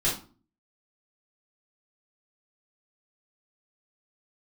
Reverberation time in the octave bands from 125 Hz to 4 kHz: 0.55, 0.55, 0.40, 0.35, 0.30, 0.25 s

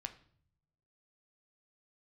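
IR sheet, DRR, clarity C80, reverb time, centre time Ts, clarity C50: 7.0 dB, 17.5 dB, 0.60 s, 6 ms, 14.0 dB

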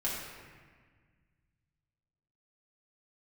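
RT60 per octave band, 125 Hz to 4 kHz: 2.9, 2.2, 1.6, 1.6, 1.7, 1.1 s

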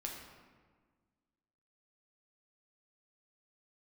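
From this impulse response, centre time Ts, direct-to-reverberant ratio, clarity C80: 56 ms, -1.0 dB, 5.0 dB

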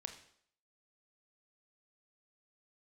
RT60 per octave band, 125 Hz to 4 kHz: 0.55, 0.60, 0.65, 0.60, 0.60, 0.60 s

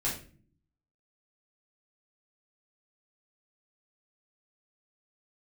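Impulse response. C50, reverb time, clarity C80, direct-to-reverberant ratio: 6.0 dB, not exponential, 11.5 dB, -7.0 dB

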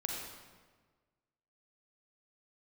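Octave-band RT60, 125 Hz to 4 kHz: 1.7, 1.6, 1.5, 1.4, 1.2, 1.0 s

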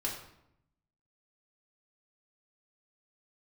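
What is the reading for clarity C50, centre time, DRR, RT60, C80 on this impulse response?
5.5 dB, 34 ms, -4.0 dB, 0.80 s, 8.5 dB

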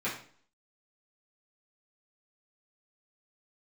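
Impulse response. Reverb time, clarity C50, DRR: 0.50 s, 6.5 dB, -10.0 dB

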